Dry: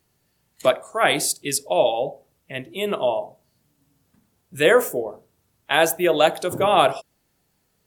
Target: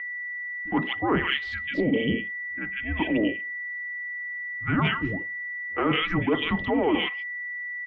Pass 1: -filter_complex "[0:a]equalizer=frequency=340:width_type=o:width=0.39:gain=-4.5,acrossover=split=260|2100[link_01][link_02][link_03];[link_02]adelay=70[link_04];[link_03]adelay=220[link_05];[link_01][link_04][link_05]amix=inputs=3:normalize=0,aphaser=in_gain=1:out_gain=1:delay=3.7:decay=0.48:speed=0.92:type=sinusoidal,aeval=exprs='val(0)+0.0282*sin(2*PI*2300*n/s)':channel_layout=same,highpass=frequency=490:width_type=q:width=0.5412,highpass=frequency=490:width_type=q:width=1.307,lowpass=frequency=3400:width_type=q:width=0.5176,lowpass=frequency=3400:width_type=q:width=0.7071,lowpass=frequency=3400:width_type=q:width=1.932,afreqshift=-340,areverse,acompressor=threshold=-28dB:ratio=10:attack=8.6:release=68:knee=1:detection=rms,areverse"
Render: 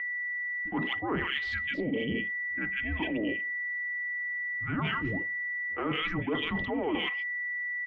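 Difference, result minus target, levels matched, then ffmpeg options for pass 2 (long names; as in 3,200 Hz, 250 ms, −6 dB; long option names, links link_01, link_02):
downward compressor: peak gain reduction +7.5 dB
-filter_complex "[0:a]equalizer=frequency=340:width_type=o:width=0.39:gain=-4.5,acrossover=split=260|2100[link_01][link_02][link_03];[link_02]adelay=70[link_04];[link_03]adelay=220[link_05];[link_01][link_04][link_05]amix=inputs=3:normalize=0,aphaser=in_gain=1:out_gain=1:delay=3.7:decay=0.48:speed=0.92:type=sinusoidal,aeval=exprs='val(0)+0.0282*sin(2*PI*2300*n/s)':channel_layout=same,highpass=frequency=490:width_type=q:width=0.5412,highpass=frequency=490:width_type=q:width=1.307,lowpass=frequency=3400:width_type=q:width=0.5176,lowpass=frequency=3400:width_type=q:width=0.7071,lowpass=frequency=3400:width_type=q:width=1.932,afreqshift=-340,areverse,acompressor=threshold=-19.5dB:ratio=10:attack=8.6:release=68:knee=1:detection=rms,areverse"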